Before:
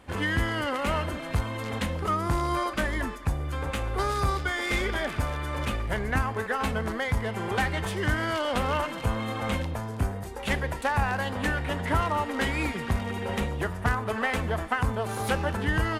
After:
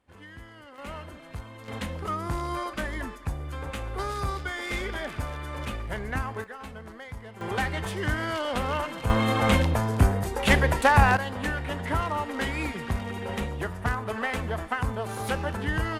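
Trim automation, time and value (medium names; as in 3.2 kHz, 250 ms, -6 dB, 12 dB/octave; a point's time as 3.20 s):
-19.5 dB
from 0.78 s -11.5 dB
from 1.68 s -4 dB
from 6.44 s -13 dB
from 7.41 s -1.5 dB
from 9.10 s +7.5 dB
from 11.17 s -2 dB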